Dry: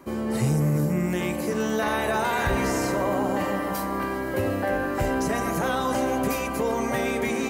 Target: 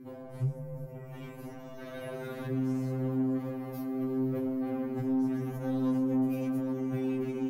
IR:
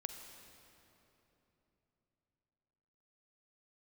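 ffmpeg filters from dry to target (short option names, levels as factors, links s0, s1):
-af "equalizer=f=125:t=o:w=1:g=10,equalizer=f=250:t=o:w=1:g=10,equalizer=f=1000:t=o:w=1:g=-11,equalizer=f=4000:t=o:w=1:g=-5,equalizer=f=8000:t=o:w=1:g=-10,acompressor=threshold=0.112:ratio=6,asoftclip=type=tanh:threshold=0.075,afftfilt=real='re*2.45*eq(mod(b,6),0)':imag='im*2.45*eq(mod(b,6),0)':win_size=2048:overlap=0.75,volume=0.473"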